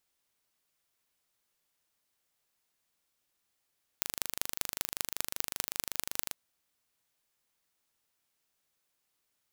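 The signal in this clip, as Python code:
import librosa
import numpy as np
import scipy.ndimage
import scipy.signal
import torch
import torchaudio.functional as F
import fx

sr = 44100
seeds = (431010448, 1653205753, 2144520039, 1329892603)

y = fx.impulse_train(sr, length_s=2.33, per_s=25.3, accent_every=5, level_db=-1.5)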